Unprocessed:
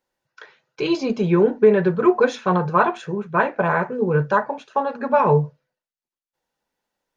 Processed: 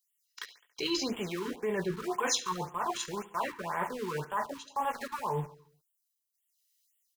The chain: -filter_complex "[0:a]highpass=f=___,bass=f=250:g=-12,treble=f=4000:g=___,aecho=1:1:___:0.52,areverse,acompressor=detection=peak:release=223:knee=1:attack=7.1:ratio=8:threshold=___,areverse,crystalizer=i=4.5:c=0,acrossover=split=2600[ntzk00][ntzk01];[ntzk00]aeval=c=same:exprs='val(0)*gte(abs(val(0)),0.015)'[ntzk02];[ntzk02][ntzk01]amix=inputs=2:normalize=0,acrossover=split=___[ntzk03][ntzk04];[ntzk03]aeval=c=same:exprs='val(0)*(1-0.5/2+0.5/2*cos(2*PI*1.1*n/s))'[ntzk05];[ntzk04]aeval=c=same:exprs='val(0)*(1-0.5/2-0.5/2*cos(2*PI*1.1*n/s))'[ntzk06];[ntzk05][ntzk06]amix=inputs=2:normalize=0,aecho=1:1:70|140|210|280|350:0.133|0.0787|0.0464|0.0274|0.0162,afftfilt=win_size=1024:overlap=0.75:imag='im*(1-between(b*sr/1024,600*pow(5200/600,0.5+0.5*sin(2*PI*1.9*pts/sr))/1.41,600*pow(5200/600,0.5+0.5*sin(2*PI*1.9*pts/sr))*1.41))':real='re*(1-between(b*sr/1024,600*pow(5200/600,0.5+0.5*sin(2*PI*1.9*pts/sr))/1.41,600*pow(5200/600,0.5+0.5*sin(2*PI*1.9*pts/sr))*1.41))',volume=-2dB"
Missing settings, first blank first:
140, -1, 1, -25dB, 520